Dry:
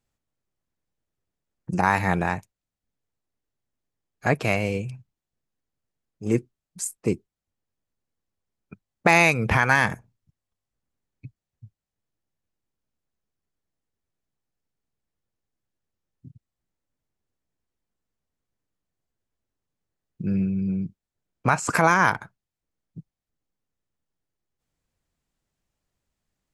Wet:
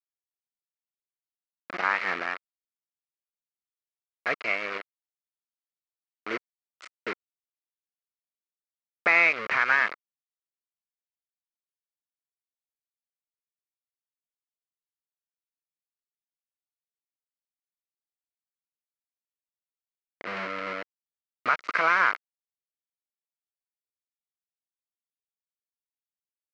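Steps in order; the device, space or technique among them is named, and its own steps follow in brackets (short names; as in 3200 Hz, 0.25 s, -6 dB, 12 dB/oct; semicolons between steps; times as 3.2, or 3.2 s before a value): hand-held game console (bit-crush 4-bit; speaker cabinet 500–4000 Hz, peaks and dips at 830 Hz -9 dB, 1300 Hz +8 dB, 2100 Hz +8 dB, 3500 Hz -7 dB); gain -5.5 dB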